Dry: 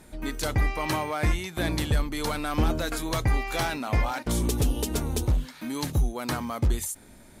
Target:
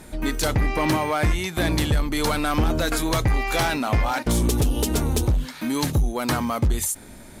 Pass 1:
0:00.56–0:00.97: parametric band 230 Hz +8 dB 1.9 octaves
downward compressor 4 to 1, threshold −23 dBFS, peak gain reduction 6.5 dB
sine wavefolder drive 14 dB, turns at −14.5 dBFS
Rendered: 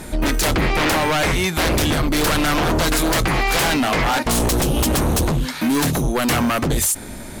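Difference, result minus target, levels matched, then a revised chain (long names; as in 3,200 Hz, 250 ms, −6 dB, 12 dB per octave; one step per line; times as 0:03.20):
sine wavefolder: distortion +24 dB
0:00.56–0:00.97: parametric band 230 Hz +8 dB 1.9 octaves
downward compressor 4 to 1, threshold −23 dBFS, peak gain reduction 6.5 dB
sine wavefolder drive 4 dB, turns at −14.5 dBFS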